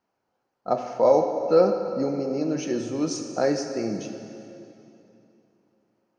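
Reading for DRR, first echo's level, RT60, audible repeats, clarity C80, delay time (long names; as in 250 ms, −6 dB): 5.0 dB, no echo audible, 2.9 s, no echo audible, 7.0 dB, no echo audible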